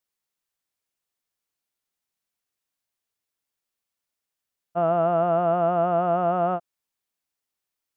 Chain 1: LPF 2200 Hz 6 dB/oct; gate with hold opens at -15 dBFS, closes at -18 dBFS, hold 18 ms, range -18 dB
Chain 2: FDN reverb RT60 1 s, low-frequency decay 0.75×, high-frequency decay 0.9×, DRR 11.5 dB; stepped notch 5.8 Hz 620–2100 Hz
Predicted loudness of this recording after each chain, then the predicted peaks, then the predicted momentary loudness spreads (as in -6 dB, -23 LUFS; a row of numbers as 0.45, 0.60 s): -23.5, -25.5 LUFS; -12.5, -11.5 dBFS; 6, 5 LU